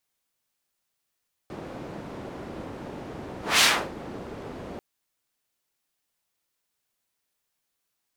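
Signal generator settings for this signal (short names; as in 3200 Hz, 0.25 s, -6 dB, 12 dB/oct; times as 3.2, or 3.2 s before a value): whoosh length 3.29 s, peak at 2.11, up 0.21 s, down 0.33 s, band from 350 Hz, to 3500 Hz, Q 0.78, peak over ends 20.5 dB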